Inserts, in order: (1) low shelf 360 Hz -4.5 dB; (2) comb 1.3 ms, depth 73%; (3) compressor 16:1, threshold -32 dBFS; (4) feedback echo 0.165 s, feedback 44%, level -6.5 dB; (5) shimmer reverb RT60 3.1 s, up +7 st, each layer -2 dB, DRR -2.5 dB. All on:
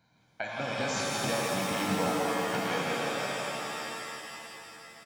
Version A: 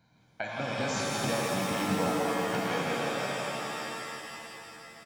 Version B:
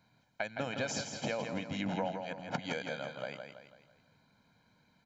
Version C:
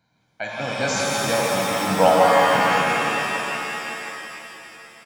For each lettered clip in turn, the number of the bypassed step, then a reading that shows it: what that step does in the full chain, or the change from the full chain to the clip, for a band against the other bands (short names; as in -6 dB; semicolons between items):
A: 1, 125 Hz band +2.5 dB; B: 5, momentary loudness spread change -5 LU; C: 3, mean gain reduction 6.0 dB